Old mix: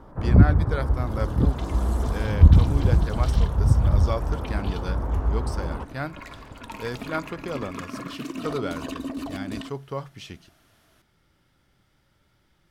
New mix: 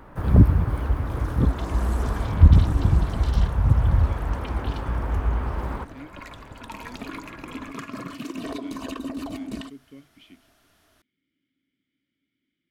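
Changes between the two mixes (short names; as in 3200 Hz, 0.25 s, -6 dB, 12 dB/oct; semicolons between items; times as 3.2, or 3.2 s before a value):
speech: add vowel filter i; first sound: remove LPF 1100 Hz 12 dB/oct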